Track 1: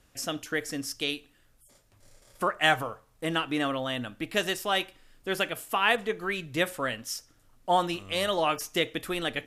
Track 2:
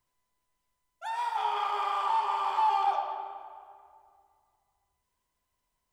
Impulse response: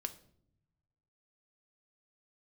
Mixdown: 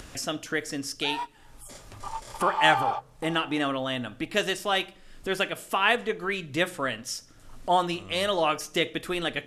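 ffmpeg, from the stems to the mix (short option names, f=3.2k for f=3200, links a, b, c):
-filter_complex "[0:a]lowpass=10k,acompressor=mode=upward:threshold=-32dB:ratio=2.5,volume=-2dB,asplit=3[a][b][c];[b]volume=-4.5dB[d];[1:a]volume=0dB[e];[c]apad=whole_len=261167[f];[e][f]sidechaingate=range=-33dB:threshold=-43dB:ratio=16:detection=peak[g];[2:a]atrim=start_sample=2205[h];[d][h]afir=irnorm=-1:irlink=0[i];[a][g][i]amix=inputs=3:normalize=0"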